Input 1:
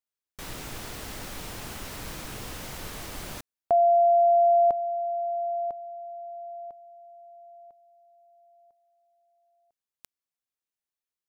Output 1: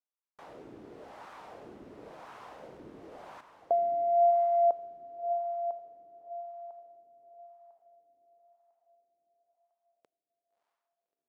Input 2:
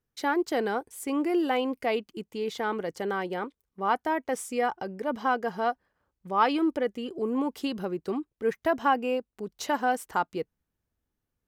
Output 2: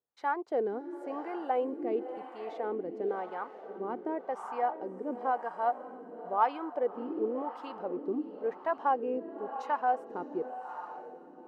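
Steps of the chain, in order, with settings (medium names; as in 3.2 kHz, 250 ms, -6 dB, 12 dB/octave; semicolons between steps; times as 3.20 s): echo that smears into a reverb 623 ms, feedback 54%, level -10 dB; Chebyshev shaper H 7 -42 dB, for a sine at -11 dBFS; wah-wah 0.95 Hz 320–1000 Hz, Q 2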